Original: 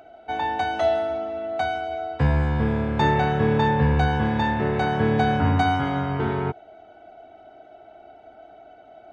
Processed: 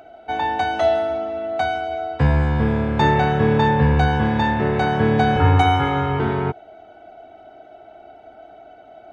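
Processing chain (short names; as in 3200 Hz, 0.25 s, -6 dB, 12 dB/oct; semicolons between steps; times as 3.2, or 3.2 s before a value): 5.36–6.19 comb 2.3 ms, depth 91%; gain +3.5 dB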